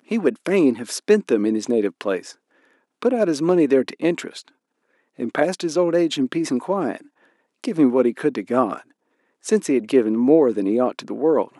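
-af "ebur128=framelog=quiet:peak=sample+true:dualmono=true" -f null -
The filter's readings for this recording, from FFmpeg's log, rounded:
Integrated loudness:
  I:         -17.4 LUFS
  Threshold: -28.3 LUFS
Loudness range:
  LRA:         3.3 LU
  Threshold: -38.8 LUFS
  LRA low:   -20.3 LUFS
  LRA high:  -17.0 LUFS
Sample peak:
  Peak:       -3.1 dBFS
True peak:
  Peak:       -3.1 dBFS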